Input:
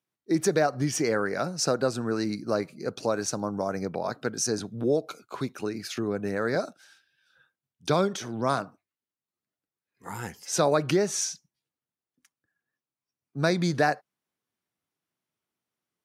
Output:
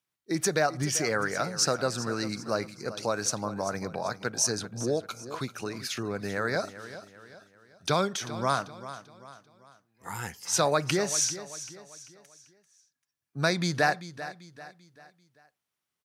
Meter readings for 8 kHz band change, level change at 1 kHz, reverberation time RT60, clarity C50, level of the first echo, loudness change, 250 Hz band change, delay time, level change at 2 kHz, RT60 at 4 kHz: +3.0 dB, 0.0 dB, no reverb, no reverb, -14.0 dB, -1.5 dB, -4.5 dB, 391 ms, +2.0 dB, no reverb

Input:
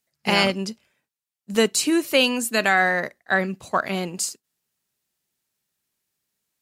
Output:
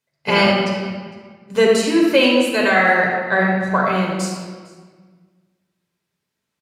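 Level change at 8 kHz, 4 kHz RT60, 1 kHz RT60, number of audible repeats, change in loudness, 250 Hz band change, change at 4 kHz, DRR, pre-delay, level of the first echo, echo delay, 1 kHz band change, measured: -4.5 dB, 1.3 s, 1.6 s, 1, +5.0 dB, +6.5 dB, +2.0 dB, -3.0 dB, 7 ms, -22.0 dB, 456 ms, +5.5 dB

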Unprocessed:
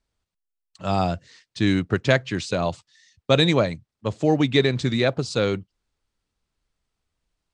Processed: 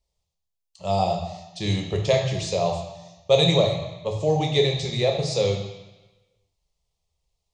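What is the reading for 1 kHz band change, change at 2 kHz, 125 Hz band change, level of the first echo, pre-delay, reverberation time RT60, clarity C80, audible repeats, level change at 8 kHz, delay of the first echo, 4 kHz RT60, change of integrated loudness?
+1.0 dB, -7.0 dB, 0.0 dB, no echo, 3 ms, 1.1 s, 7.5 dB, no echo, +3.5 dB, no echo, 1.1 s, -0.5 dB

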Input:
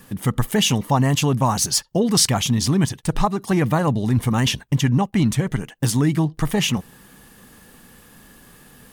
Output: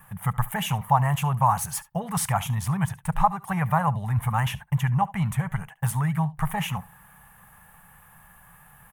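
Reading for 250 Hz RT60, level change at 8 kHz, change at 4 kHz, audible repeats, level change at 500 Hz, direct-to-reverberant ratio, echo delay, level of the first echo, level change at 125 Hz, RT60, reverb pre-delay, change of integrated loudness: no reverb, -11.0 dB, -14.0 dB, 1, -11.5 dB, no reverb, 71 ms, -20.5 dB, -4.0 dB, no reverb, no reverb, -6.0 dB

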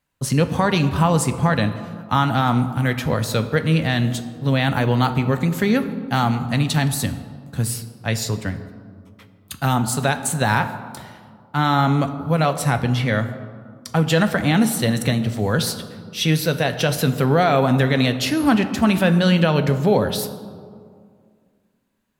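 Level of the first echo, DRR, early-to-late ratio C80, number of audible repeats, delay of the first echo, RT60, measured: no echo, 8.5 dB, 12.5 dB, no echo, no echo, 2.2 s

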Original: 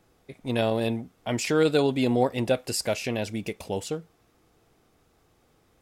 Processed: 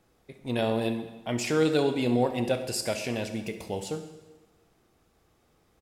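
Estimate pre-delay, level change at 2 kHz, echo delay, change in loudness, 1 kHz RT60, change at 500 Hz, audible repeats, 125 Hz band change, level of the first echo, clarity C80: 5 ms, -2.0 dB, 67 ms, -2.0 dB, 1.2 s, -2.5 dB, 1, -2.0 dB, -14.5 dB, 11.5 dB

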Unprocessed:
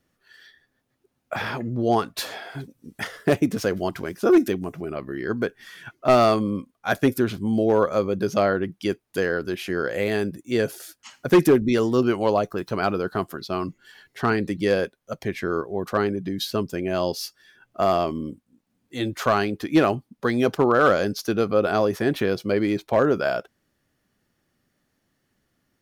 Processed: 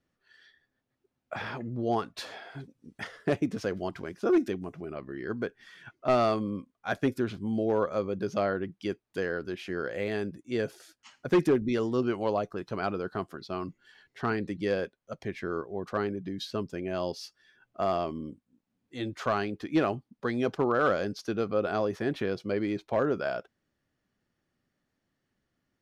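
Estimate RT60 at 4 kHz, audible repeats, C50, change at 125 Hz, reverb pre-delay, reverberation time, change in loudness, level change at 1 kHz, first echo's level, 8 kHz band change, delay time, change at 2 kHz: no reverb, no echo, no reverb, -7.5 dB, no reverb, no reverb, -7.5 dB, -8.0 dB, no echo, under -10 dB, no echo, -8.0 dB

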